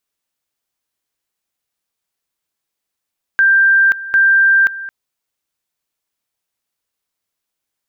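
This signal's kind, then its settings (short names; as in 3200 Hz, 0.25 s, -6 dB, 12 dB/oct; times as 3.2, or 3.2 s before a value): two-level tone 1580 Hz -7.5 dBFS, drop 16.5 dB, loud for 0.53 s, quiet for 0.22 s, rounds 2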